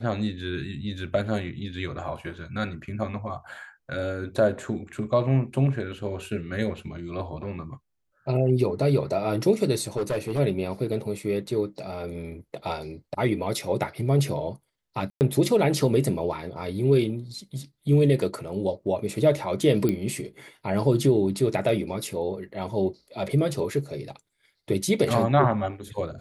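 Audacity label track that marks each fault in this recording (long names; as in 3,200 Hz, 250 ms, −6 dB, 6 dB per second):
9.960000	10.400000	clipping −22.5 dBFS
15.100000	15.210000	drop-out 109 ms
19.890000	19.890000	click −13 dBFS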